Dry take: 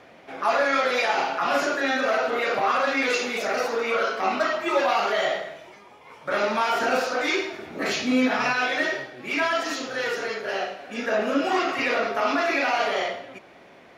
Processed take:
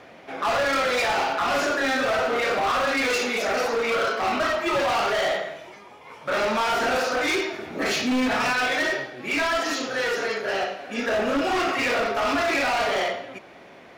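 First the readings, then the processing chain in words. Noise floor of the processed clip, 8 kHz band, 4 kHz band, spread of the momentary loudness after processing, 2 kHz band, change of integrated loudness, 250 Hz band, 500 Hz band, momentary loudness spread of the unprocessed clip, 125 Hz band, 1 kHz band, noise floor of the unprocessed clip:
−47 dBFS, +3.5 dB, +2.0 dB, 6 LU, +0.5 dB, +0.5 dB, 0.0 dB, +0.5 dB, 8 LU, +5.0 dB, 0.0 dB, −50 dBFS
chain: hard clipping −23 dBFS, distortion −10 dB
level +3 dB

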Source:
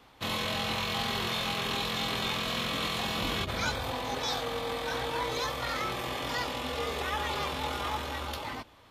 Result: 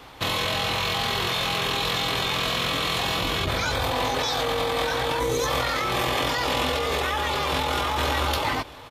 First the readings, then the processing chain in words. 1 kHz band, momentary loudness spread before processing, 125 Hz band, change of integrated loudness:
+7.5 dB, 4 LU, +8.0 dB, +7.5 dB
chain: parametric band 220 Hz −10 dB 0.22 octaves
gain on a spectral selection 0:05.20–0:05.46, 550–5,600 Hz −9 dB
in parallel at +3 dB: compressor whose output falls as the input rises −36 dBFS, ratio −0.5
on the sum: single-tap delay 1,179 ms −22.5 dB
level +2.5 dB

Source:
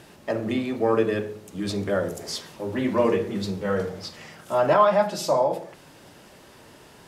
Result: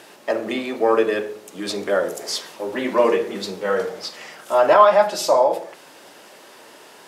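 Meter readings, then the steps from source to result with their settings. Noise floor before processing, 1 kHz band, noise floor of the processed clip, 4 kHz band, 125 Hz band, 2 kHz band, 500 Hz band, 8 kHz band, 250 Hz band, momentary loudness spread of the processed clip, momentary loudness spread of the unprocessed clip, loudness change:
−50 dBFS, +6.0 dB, −46 dBFS, +6.0 dB, can't be measured, +6.0 dB, +5.0 dB, +6.0 dB, −1.0 dB, 16 LU, 14 LU, +5.0 dB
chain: high-pass filter 380 Hz 12 dB per octave
level +6 dB

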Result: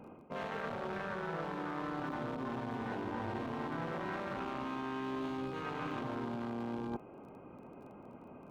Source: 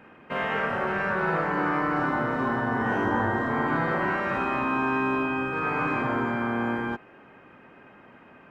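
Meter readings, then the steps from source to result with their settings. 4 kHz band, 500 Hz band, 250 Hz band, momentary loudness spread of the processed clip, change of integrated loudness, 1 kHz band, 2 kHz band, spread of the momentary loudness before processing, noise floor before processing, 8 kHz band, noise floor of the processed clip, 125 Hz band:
−8.5 dB, −11.5 dB, −11.0 dB, 14 LU, −13.0 dB, −14.0 dB, −17.5 dB, 3 LU, −52 dBFS, can't be measured, −53 dBFS, −11.0 dB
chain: adaptive Wiener filter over 25 samples
reversed playback
downward compressor 6 to 1, threshold −39 dBFS, peak gain reduction 15.5 dB
reversed playback
surface crackle 17 per second −56 dBFS
level +2 dB

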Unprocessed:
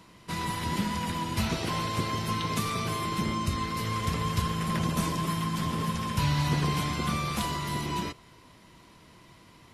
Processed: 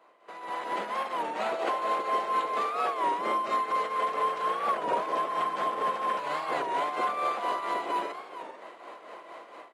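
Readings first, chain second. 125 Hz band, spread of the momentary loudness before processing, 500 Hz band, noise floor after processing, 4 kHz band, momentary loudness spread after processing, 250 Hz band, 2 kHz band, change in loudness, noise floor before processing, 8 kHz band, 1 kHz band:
below −25 dB, 4 LU, +6.0 dB, −50 dBFS, −8.0 dB, 17 LU, −12.0 dB, −0.5 dB, +0.5 dB, −55 dBFS, below −10 dB, +5.0 dB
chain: high-pass filter 600 Hz 24 dB per octave
bad sample-rate conversion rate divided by 4×, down filtered, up zero stuff
in parallel at −1.5 dB: downward compressor, threshold −37 dBFS, peak gain reduction 15.5 dB
on the sum: tilt shelving filter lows +8.5 dB
brickwall limiter −25 dBFS, peak gain reduction 11.5 dB
shaped tremolo triangle 4.3 Hz, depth 60%
automatic gain control gain up to 16.5 dB
head-to-tape spacing loss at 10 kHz 33 dB
notch filter 950 Hz, Q 9
single-tap delay 447 ms −12.5 dB
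wow of a warped record 33 1/3 rpm, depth 160 cents

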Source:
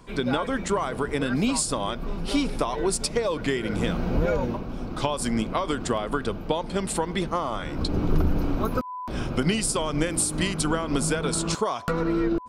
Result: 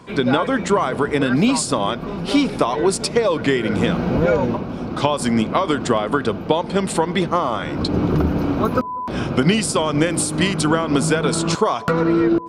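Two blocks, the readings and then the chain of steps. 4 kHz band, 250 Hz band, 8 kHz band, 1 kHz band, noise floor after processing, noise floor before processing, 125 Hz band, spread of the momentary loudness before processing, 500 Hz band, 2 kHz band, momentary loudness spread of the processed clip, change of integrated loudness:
+6.0 dB, +8.0 dB, +2.5 dB, +8.0 dB, −30 dBFS, −35 dBFS, +6.5 dB, 5 LU, +8.0 dB, +7.5 dB, 5 LU, +7.0 dB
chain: high-pass filter 96 Hz 12 dB per octave
high-shelf EQ 7,400 Hz −10 dB
on a send: bucket-brigade delay 193 ms, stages 1,024, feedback 51%, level −23.5 dB
on the sum: level +8 dB

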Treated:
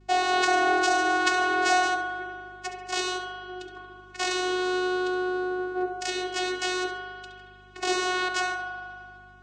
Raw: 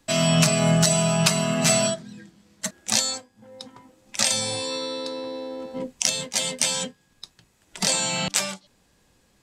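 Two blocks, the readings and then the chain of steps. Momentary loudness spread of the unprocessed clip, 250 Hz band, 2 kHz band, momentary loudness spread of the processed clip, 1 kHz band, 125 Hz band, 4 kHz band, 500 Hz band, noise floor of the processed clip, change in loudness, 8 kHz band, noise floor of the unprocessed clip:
15 LU, −5.0 dB, +5.5 dB, 17 LU, +7.0 dB, −27.0 dB, −6.5 dB, −1.5 dB, −50 dBFS, −3.5 dB, −13.5 dB, −64 dBFS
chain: high-shelf EQ 5,400 Hz −8 dB
channel vocoder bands 8, saw 366 Hz
spring reverb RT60 2.1 s, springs 37 ms, chirp 80 ms, DRR 2.5 dB
mains hum 50 Hz, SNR 28 dB
on a send: flutter between parallel walls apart 11.8 metres, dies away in 0.36 s

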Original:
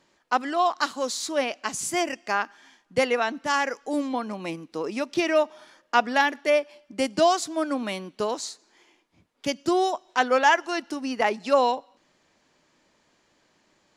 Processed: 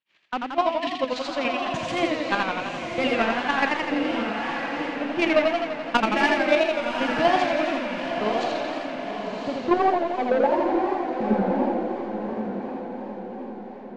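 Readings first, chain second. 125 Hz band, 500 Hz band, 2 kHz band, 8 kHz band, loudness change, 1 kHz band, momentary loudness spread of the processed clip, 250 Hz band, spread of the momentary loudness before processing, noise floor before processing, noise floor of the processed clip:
+7.5 dB, +2.0 dB, +1.5 dB, −12.0 dB, +1.0 dB, +0.5 dB, 10 LU, +4.5 dB, 10 LU, −67 dBFS, −37 dBFS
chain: spike at every zero crossing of −21 dBFS
noise gate −24 dBFS, range −59 dB
time-frequency box erased 0:00.69–0:00.99, 430–1,700 Hz
Bessel low-pass filter 4,000 Hz, order 2
parametric band 130 Hz +14.5 dB 2.1 octaves
in parallel at +3 dB: downward compressor 4 to 1, threshold −31 dBFS, peak gain reduction 15.5 dB
on the sum: low-pass filter sweep 2,700 Hz → 140 Hz, 0:08.63–0:12.00
soft clipping −11 dBFS, distortion −13 dB
square-wave tremolo 6.9 Hz, depth 60%, duty 20%
on a send: feedback delay with all-pass diffusion 1,034 ms, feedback 45%, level −4.5 dB
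on the sum: feedback echo with a swinging delay time 85 ms, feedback 70%, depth 138 cents, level −3.5 dB

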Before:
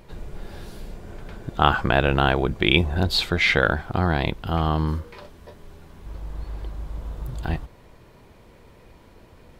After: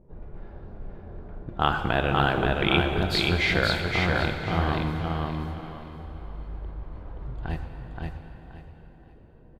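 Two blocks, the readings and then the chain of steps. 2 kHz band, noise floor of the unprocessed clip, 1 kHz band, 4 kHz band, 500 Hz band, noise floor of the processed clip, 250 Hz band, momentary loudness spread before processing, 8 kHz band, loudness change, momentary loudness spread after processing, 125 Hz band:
−2.5 dB, −51 dBFS, −2.5 dB, −3.0 dB, −2.5 dB, −51 dBFS, −2.5 dB, 21 LU, −3.0 dB, −3.5 dB, 21 LU, −3.0 dB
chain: low-pass that shuts in the quiet parts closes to 440 Hz, open at −20 dBFS
repeating echo 526 ms, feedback 25%, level −3 dB
dense smooth reverb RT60 4.1 s, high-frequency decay 0.85×, pre-delay 0 ms, DRR 6.5 dB
level −5.5 dB

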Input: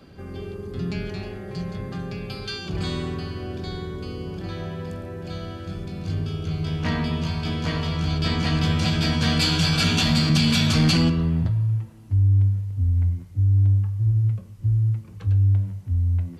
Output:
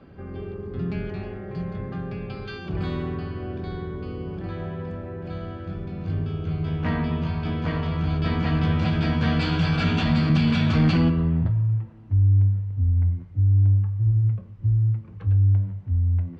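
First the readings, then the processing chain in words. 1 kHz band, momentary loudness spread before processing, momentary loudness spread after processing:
−0.5 dB, 15 LU, 14 LU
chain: low-pass filter 2,100 Hz 12 dB per octave

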